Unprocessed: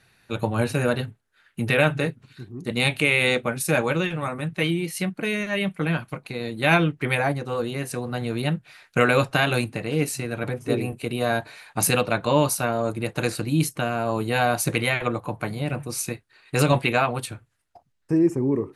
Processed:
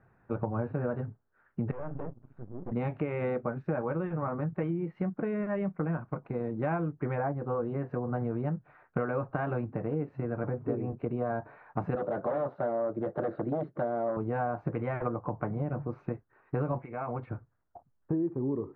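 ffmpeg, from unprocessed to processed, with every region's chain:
-filter_complex "[0:a]asettb=1/sr,asplit=3[a][b][c];[a]atrim=end=1.714[d];[b]atrim=start=1.71:end=2.72,asetpts=PTS-STARTPTS,afade=t=in:d=0.004:c=qsin,afade=t=out:st=1.006:d=0.004:c=qsin,equalizer=f=1.9k:t=o:w=1.4:g=-8,aeval=exprs='max(val(0),0)':c=same,acompressor=threshold=-33dB:ratio=3:attack=3.2:release=140:knee=1:detection=peak[e];[c]atrim=start=2.716[f];[d][e]acrossfade=d=0.004:c1=hsin:c2=qsin[g];[g][f]acrossfade=d=0.004:c1=qsin:c2=hsin,asettb=1/sr,asplit=3[h][i][j];[h]atrim=end=11.954[k];[i]atrim=start=11.95:end=14.17,asetpts=PTS-STARTPTS,afade=t=in:d=0.004:c=qsin,afade=t=out:st=2.216:d=0.004:c=qsin,aeval=exprs='0.1*(abs(mod(val(0)/0.1+3,4)-2)-1)':c=same,highpass=160,equalizer=f=360:t=q:w=4:g=4,equalizer=f=590:t=q:w=4:g=9,equalizer=f=970:t=q:w=4:g=-6,equalizer=f=2.5k:t=q:w=4:g=-7,equalizer=f=3.7k:t=q:w=4:g=8,lowpass=f=4.7k:w=0.5412,lowpass=f=4.7k:w=1.3066[l];[j]atrim=start=14.166[m];[k][l]acrossfade=d=0.004:c1=hsin:c2=qsin[n];[n][m]acrossfade=d=0.004:c1=qsin:c2=hsin,asettb=1/sr,asplit=3[o][p][q];[o]atrim=end=16.794[r];[p]atrim=start=16.79:end=17.29,asetpts=PTS-STARTPTS,afade=t=in:d=0.004:c=qsin,afade=t=out:st=0.496:d=0.004:c=qsin,equalizer=f=2.2k:w=7.2:g=13.5,acompressor=threshold=-29dB:ratio=5:attack=3.2:release=140:knee=1:detection=peak[s];[q]atrim=start=17.286[t];[r][s]acrossfade=d=0.004:c1=hsin:c2=qsin[u];[u][t]acrossfade=d=0.004:c1=qsin:c2=hsin,lowpass=f=1.3k:w=0.5412,lowpass=f=1.3k:w=1.3066,acompressor=threshold=-28dB:ratio=6"

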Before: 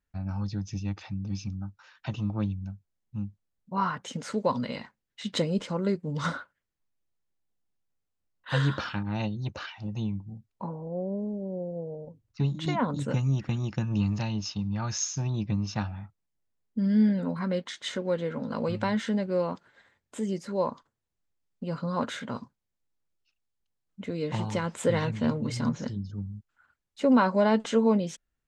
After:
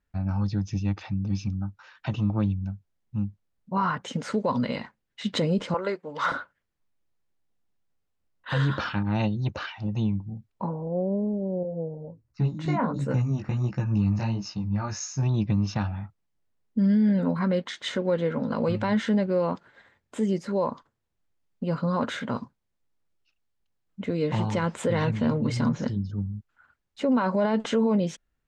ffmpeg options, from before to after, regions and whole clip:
-filter_complex "[0:a]asettb=1/sr,asplit=3[a][b][c];[a]atrim=end=5.744[d];[b]atrim=start=5.74:end=6.32,asetpts=PTS-STARTPTS,afade=t=in:d=0.004:c=qsin,afade=t=out:st=0.576:d=0.004:c=qsin,highpass=750,highshelf=f=3.9k:g=-11.5,acontrast=61[e];[c]atrim=start=6.316[f];[d][e]acrossfade=d=0.004:c1=hsin:c2=qsin[g];[g][f]acrossfade=d=0.004:c1=qsin:c2=hsin,asettb=1/sr,asplit=3[h][i][j];[h]atrim=end=11.634[k];[i]atrim=start=11.63:end=15.23,asetpts=PTS-STARTPTS,afade=t=in:d=0.004:c=qsin,afade=t=out:st=3.596:d=0.004:c=qsin,equalizer=f=3.3k:w=4.3:g=-12.5,flanger=delay=15:depth=5.4:speed=1.4[l];[j]atrim=start=15.226[m];[k][l]acrossfade=d=0.004:c1=hsin:c2=qsin[n];[n][m]acrossfade=d=0.004:c1=qsin:c2=hsin,aemphasis=mode=reproduction:type=cd,alimiter=limit=-21dB:level=0:latency=1:release=38,volume=5dB"

